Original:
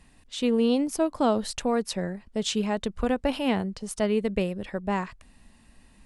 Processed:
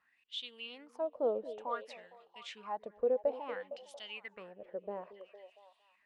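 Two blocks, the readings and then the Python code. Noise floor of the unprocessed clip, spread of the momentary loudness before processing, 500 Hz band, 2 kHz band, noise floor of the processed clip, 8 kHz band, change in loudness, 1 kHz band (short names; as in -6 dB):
-57 dBFS, 8 LU, -8.5 dB, -12.0 dB, -74 dBFS, under -25 dB, -12.0 dB, -11.0 dB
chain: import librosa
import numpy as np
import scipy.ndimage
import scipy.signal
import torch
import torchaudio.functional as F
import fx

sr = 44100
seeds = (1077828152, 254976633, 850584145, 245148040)

y = fx.filter_lfo_bandpass(x, sr, shape='sine', hz=0.57, low_hz=480.0, high_hz=3400.0, q=6.7)
y = fx.echo_stepped(y, sr, ms=229, hz=330.0, octaves=0.7, feedback_pct=70, wet_db=-10.0)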